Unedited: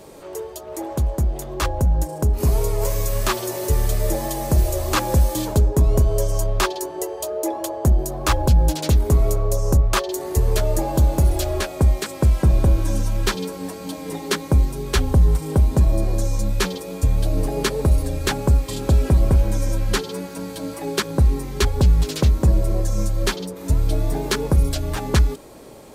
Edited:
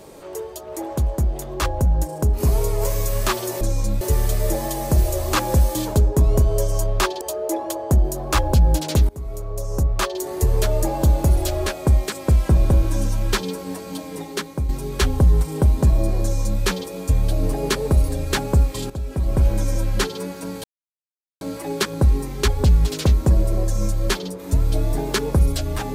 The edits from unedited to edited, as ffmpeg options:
ffmpeg -i in.wav -filter_complex "[0:a]asplit=8[link_01][link_02][link_03][link_04][link_05][link_06][link_07][link_08];[link_01]atrim=end=3.612[link_09];[link_02]atrim=start=16.158:end=16.562[link_10];[link_03]atrim=start=3.608:end=6.812[link_11];[link_04]atrim=start=7.148:end=9.03,asetpts=PTS-STARTPTS,afade=type=out:start_time=1.878:duration=0.004:curve=hsin:silence=0.0794328[link_12];[link_05]atrim=start=9.03:end=14.63,asetpts=PTS-STARTPTS,afade=type=in:duration=1.22:silence=0.0794328,afade=type=out:start_time=4.84:duration=0.76:silence=0.334965[link_13];[link_06]atrim=start=14.63:end=18.84,asetpts=PTS-STARTPTS,afade=type=in:duration=0.004:curve=hsin:silence=0.334965,afade=type=out:start_time=4.206:duration=0.004:curve=hsin:silence=0.223872[link_14];[link_07]atrim=start=18.84:end=20.58,asetpts=PTS-STARTPTS,afade=type=in:duration=0.56:curve=qua:silence=0.223872,afade=type=out:start_time=1.736:duration=0.004:curve=hsin,apad=pad_dur=0.77[link_15];[link_08]atrim=start=20.58,asetpts=PTS-STARTPTS,afade=type=in:duration=0.004:curve=hsin[link_16];[link_09][link_10]acrossfade=duration=0.004:curve1=hsin:curve2=hsin[link_17];[link_17][link_11]acrossfade=duration=0.004:curve1=hsin:curve2=hsin[link_18];[link_12][link_13][link_14][link_15][link_16]concat=n=5:v=0:a=1[link_19];[link_18][link_19]acrossfade=duration=0.004:curve1=hsin:curve2=hsin" out.wav

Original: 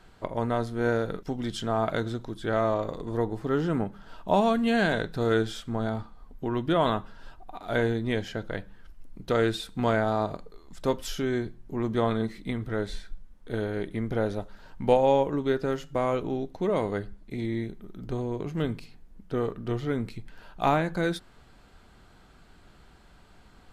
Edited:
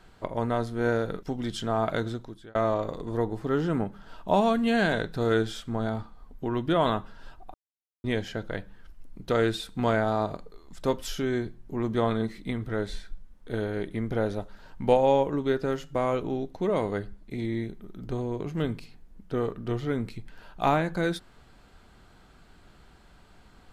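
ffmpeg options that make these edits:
ffmpeg -i in.wav -filter_complex "[0:a]asplit=4[link_01][link_02][link_03][link_04];[link_01]atrim=end=2.55,asetpts=PTS-STARTPTS,afade=type=out:start_time=2.08:duration=0.47[link_05];[link_02]atrim=start=2.55:end=7.54,asetpts=PTS-STARTPTS,afade=type=in:duration=0.004:curve=hsin,afade=type=out:start_time=4.986:duration=0.004:curve=hsin[link_06];[link_03]atrim=start=7.54:end=8.04,asetpts=PTS-STARTPTS,volume=0[link_07];[link_04]atrim=start=8.04,asetpts=PTS-STARTPTS,afade=type=in:duration=0.004:curve=hsin[link_08];[link_05][link_06][link_07][link_08]concat=n=4:v=0:a=1" out.wav

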